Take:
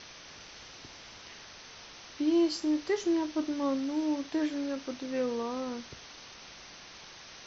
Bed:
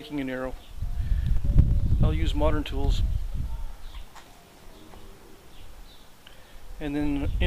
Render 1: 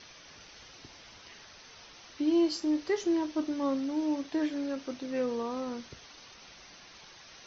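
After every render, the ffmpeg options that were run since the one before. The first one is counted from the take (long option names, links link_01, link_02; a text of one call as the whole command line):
ffmpeg -i in.wav -af "afftdn=noise_reduction=6:noise_floor=-50" out.wav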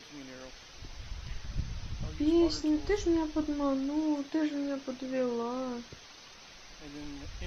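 ffmpeg -i in.wav -i bed.wav -filter_complex "[1:a]volume=-16.5dB[link_01];[0:a][link_01]amix=inputs=2:normalize=0" out.wav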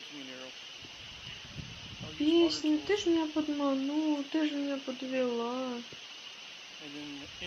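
ffmpeg -i in.wav -af "highpass=160,equalizer=frequency=2900:width=3.9:gain=14.5" out.wav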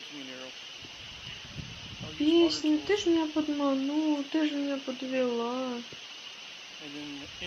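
ffmpeg -i in.wav -af "volume=2.5dB" out.wav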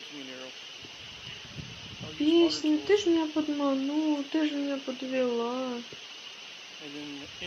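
ffmpeg -i in.wav -af "highpass=73,equalizer=frequency=420:width=6.5:gain=5.5" out.wav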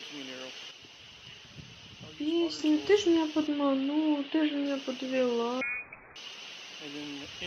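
ffmpeg -i in.wav -filter_complex "[0:a]asettb=1/sr,asplit=3[link_01][link_02][link_03];[link_01]atrim=end=3.474[link_04];[link_02]atrim=start=3.47:end=4.66,asetpts=PTS-STARTPTS,afade=type=in:duration=0.004:curve=qsin,afade=type=out:start_time=1.186:duration=0.004:curve=qsin,lowpass=frequency=4000:width=0.5412,lowpass=frequency=4000:width=1.3066[link_05];[link_03]atrim=start=4.656[link_06];[link_04][link_05]acrossfade=duration=0.004:curve1=hsin:curve2=qsin[link_07];[link_07][link_06]acrossfade=duration=0.004:curve1=qsin:curve2=hsin,asettb=1/sr,asplit=3[link_08][link_09][link_10];[link_08]atrim=end=5.614[link_11];[link_09]atrim=start=5.61:end=6.16,asetpts=PTS-STARTPTS,afade=type=in:duration=0.004:curve=qsin,afade=type=out:start_time=0.546:duration=0.004:curve=qsin,lowpass=frequency=2300:width_type=q:width=0.5098,lowpass=frequency=2300:width_type=q:width=0.6013,lowpass=frequency=2300:width_type=q:width=0.9,lowpass=frequency=2300:width_type=q:width=2.563,afreqshift=-2700[link_12];[link_10]atrim=start=6.156[link_13];[link_11][link_12]acrossfade=duration=0.004:curve1=hsin:curve2=qsin[link_14];[link_14][link_13]acrossfade=duration=0.004:curve1=qsin:curve2=hsin,asplit=3[link_15][link_16][link_17];[link_15]atrim=end=0.712[link_18];[link_16]atrim=start=0.708:end=2.592,asetpts=PTS-STARTPTS,volume=-6.5dB[link_19];[link_17]atrim=start=2.588[link_20];[link_18][link_19]acrossfade=duration=0.004:curve1=hsin:curve2=hsin[link_21];[link_21][link_20]acrossfade=duration=0.004:curve1=hsin:curve2=hsin" out.wav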